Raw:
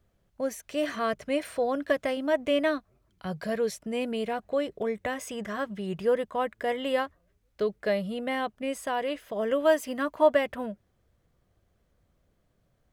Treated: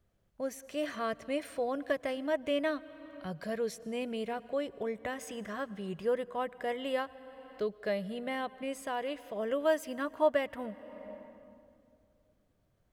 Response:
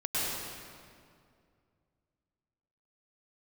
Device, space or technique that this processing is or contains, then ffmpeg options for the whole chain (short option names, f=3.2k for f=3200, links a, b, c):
ducked reverb: -filter_complex "[0:a]asplit=3[a][b][c];[1:a]atrim=start_sample=2205[d];[b][d]afir=irnorm=-1:irlink=0[e];[c]apad=whole_len=569838[f];[e][f]sidechaincompress=threshold=-44dB:ratio=4:attack=5.4:release=390,volume=-13.5dB[g];[a][g]amix=inputs=2:normalize=0,volume=-6dB"